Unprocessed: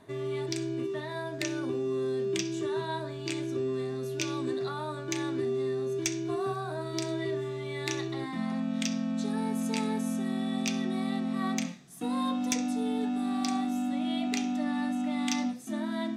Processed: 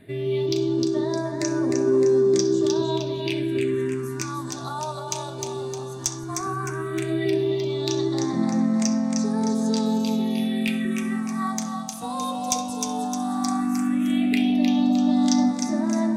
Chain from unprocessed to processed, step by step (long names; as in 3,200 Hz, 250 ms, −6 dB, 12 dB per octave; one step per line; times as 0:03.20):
echo with a time of its own for lows and highs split 670 Hz, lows 173 ms, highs 307 ms, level −4.5 dB
all-pass phaser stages 4, 0.14 Hz, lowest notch 310–3,100 Hz
level +7.5 dB